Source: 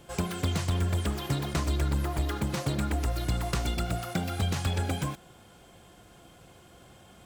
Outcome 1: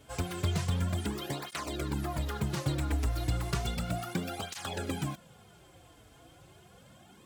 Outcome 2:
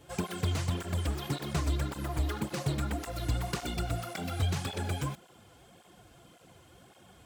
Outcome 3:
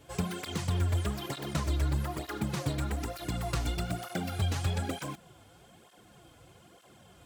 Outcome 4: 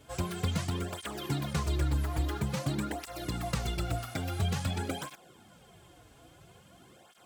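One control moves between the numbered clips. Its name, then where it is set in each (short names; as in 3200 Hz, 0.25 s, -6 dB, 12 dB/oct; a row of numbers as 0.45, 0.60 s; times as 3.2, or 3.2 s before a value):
tape flanging out of phase, nulls at: 0.33, 1.8, 1.1, 0.49 Hz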